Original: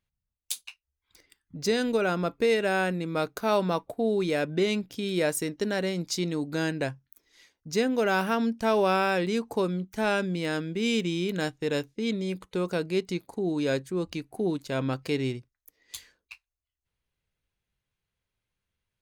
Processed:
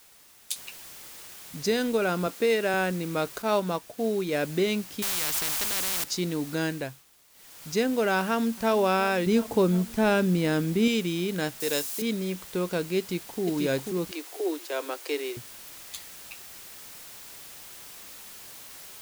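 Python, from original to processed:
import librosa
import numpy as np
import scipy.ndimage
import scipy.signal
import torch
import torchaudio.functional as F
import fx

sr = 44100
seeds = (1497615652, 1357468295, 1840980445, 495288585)

y = fx.noise_floor_step(x, sr, seeds[0], at_s=0.56, before_db=-55, after_db=-45, tilt_db=0.0)
y = fx.highpass(y, sr, hz=170.0, slope=12, at=(2.27, 2.74))
y = fx.upward_expand(y, sr, threshold_db=-35.0, expansion=1.5, at=(3.42, 4.33))
y = fx.spectral_comp(y, sr, ratio=10.0, at=(5.02, 6.04))
y = fx.echo_throw(y, sr, start_s=8.21, length_s=0.53, ms=360, feedback_pct=70, wet_db=-18.0)
y = fx.low_shelf(y, sr, hz=490.0, db=7.5, at=(9.26, 10.88))
y = fx.bass_treble(y, sr, bass_db=-11, treble_db=12, at=(11.6, 12.02))
y = fx.echo_throw(y, sr, start_s=12.98, length_s=0.44, ms=490, feedback_pct=35, wet_db=-4.5)
y = fx.steep_highpass(y, sr, hz=310.0, slope=72, at=(14.11, 15.37))
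y = fx.edit(y, sr, fx.fade_down_up(start_s=6.65, length_s=1.04, db=-15.0, fade_s=0.39), tone=tone)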